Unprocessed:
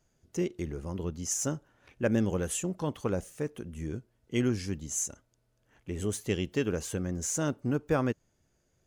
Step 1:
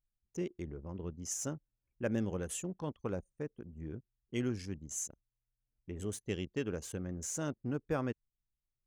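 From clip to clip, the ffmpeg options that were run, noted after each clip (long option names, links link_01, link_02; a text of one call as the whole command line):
ffmpeg -i in.wav -af "anlmdn=0.251,volume=-7dB" out.wav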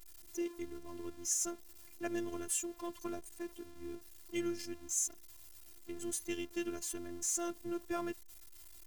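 ffmpeg -i in.wav -af "aeval=exprs='val(0)+0.5*0.00422*sgn(val(0))':channel_layout=same,aemphasis=mode=production:type=cd,afftfilt=real='hypot(re,im)*cos(PI*b)':imag='0':win_size=512:overlap=0.75,volume=1dB" out.wav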